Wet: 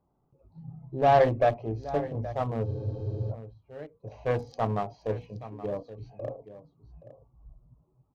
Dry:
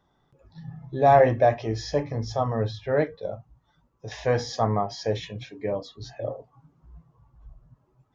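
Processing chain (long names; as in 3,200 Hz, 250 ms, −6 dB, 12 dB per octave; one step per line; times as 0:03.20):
adaptive Wiener filter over 25 samples
single-tap delay 824 ms −15 dB
harmonic generator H 6 −25 dB, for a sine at −7 dBFS
frozen spectrum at 0:02.68, 0.62 s
level −3.5 dB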